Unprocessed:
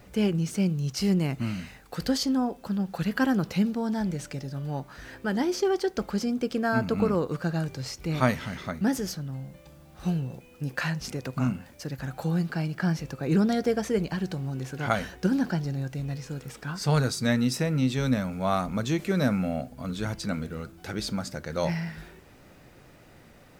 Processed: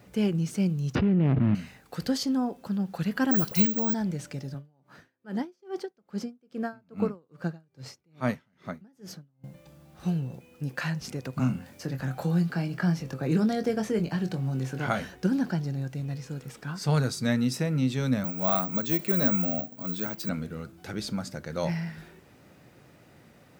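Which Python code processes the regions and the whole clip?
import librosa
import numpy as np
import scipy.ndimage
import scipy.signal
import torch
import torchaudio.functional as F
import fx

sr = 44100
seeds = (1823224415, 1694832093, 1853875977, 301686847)

y = fx.chain(x, sr, fx.median_filter(points=41),
    fx.lowpass(hz=2900.0, slope=24),
    fx.env_flatten(amount_pct=100), at=(0.95, 1.55))
y = fx.chain(y, sr, fx.high_shelf(hz=2500.0, db=9.0),
    fx.dispersion(late='highs', ms=45.0, hz=1100.0),
    fx.resample_bad(factor=2, down='none', up='zero_stuff'), at=(3.31, 3.94))
y = fx.chain(y, sr, fx.highpass(hz=110.0, slope=12),
    fx.high_shelf(hz=2600.0, db=-5.5),
    fx.tremolo_db(hz=2.4, depth_db=35), at=(4.54, 9.44))
y = fx.chain(y, sr, fx.doubler(ms=23.0, db=-8.0),
    fx.band_squash(depth_pct=40), at=(11.39, 15.01))
y = fx.chain(y, sr, fx.highpass(hz=160.0, slope=24),
    fx.resample_bad(factor=2, down='filtered', up='zero_stuff'), at=(18.24, 20.29))
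y = scipy.signal.sosfilt(scipy.signal.butter(2, 120.0, 'highpass', fs=sr, output='sos'), y)
y = fx.low_shelf(y, sr, hz=160.0, db=7.5)
y = y * librosa.db_to_amplitude(-3.0)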